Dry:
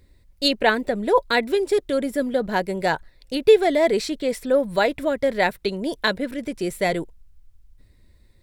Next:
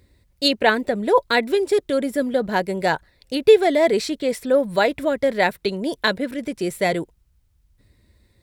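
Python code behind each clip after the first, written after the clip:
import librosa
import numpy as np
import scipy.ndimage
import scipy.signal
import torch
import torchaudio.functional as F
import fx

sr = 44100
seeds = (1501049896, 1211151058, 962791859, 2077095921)

y = scipy.signal.sosfilt(scipy.signal.butter(2, 55.0, 'highpass', fs=sr, output='sos'), x)
y = F.gain(torch.from_numpy(y), 1.5).numpy()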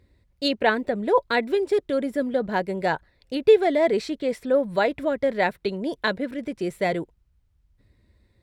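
y = fx.high_shelf(x, sr, hz=5100.0, db=-12.0)
y = F.gain(torch.from_numpy(y), -3.0).numpy()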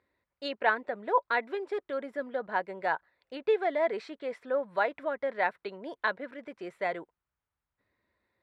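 y = fx.bandpass_q(x, sr, hz=1200.0, q=1.2)
y = F.gain(torch.from_numpy(y), -1.5).numpy()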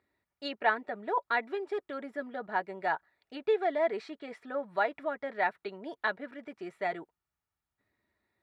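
y = fx.notch_comb(x, sr, f0_hz=520.0)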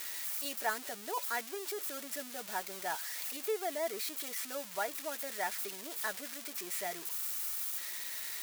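y = x + 0.5 * 10.0 ** (-21.5 / 20.0) * np.diff(np.sign(x), prepend=np.sign(x[:1]))
y = F.gain(torch.from_numpy(y), -7.5).numpy()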